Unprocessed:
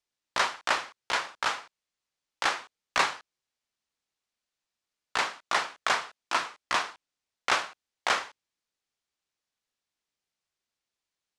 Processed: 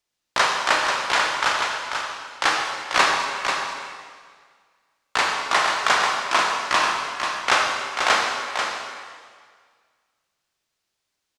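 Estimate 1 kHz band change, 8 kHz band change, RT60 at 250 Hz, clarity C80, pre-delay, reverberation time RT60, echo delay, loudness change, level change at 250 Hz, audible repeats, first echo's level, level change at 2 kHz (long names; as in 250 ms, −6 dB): +9.5 dB, +9.5 dB, 1.8 s, 1.0 dB, 27 ms, 1.8 s, 489 ms, +8.0 dB, +9.5 dB, 1, −6.0 dB, +9.5 dB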